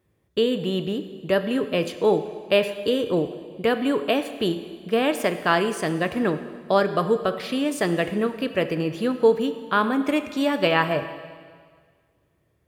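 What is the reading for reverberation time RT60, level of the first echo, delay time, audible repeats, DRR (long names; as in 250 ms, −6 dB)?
1.8 s, no echo audible, no echo audible, no echo audible, 9.0 dB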